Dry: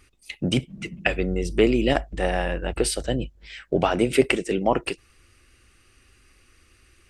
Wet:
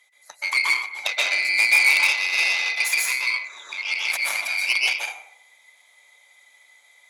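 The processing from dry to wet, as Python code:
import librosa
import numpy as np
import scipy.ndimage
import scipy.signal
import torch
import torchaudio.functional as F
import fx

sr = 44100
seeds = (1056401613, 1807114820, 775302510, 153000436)

y = fx.band_swap(x, sr, width_hz=2000)
y = fx.over_compress(y, sr, threshold_db=-27.0, ratio=-1.0, at=(3.56, 4.68), fade=0.02)
y = fx.rev_plate(y, sr, seeds[0], rt60_s=0.73, hf_ratio=0.65, predelay_ms=115, drr_db=-4.5)
y = fx.cheby_harmonics(y, sr, harmonics=(8,), levels_db=(-18,), full_scale_db=-2.0)
y = scipy.signal.sosfilt(scipy.signal.butter(2, 1000.0, 'highpass', fs=sr, output='sos'), y)
y = F.gain(torch.from_numpy(y), -3.0).numpy()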